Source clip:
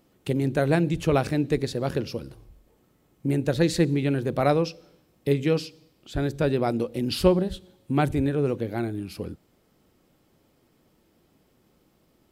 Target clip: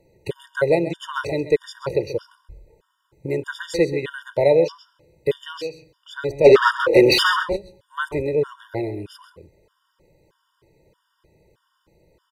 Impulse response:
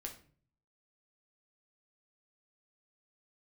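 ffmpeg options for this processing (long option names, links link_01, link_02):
-filter_complex "[0:a]aemphasis=mode=reproduction:type=cd,acrossover=split=260|1800[link_01][link_02][link_03];[link_01]acompressor=threshold=-39dB:ratio=6[link_04];[link_04][link_02][link_03]amix=inputs=3:normalize=0,aecho=1:1:2:0.82,asplit=3[link_05][link_06][link_07];[link_05]afade=type=out:start_time=6.44:duration=0.02[link_08];[link_06]asplit=2[link_09][link_10];[link_10]highpass=frequency=720:poles=1,volume=30dB,asoftclip=type=tanh:threshold=-4dB[link_11];[link_09][link_11]amix=inputs=2:normalize=0,lowpass=frequency=2300:poles=1,volume=-6dB,afade=type=in:start_time=6.44:duration=0.02,afade=type=out:start_time=7.42:duration=0.02[link_12];[link_07]afade=type=in:start_time=7.42:duration=0.02[link_13];[link_08][link_12][link_13]amix=inputs=3:normalize=0,asplit=2[link_14][link_15];[link_15]aecho=0:1:133:0.224[link_16];[link_14][link_16]amix=inputs=2:normalize=0,afftfilt=real='re*gt(sin(2*PI*1.6*pts/sr)*(1-2*mod(floor(b*sr/1024/940),2)),0)':imag='im*gt(sin(2*PI*1.6*pts/sr)*(1-2*mod(floor(b*sr/1024/940),2)),0)':win_size=1024:overlap=0.75,volume=4.5dB"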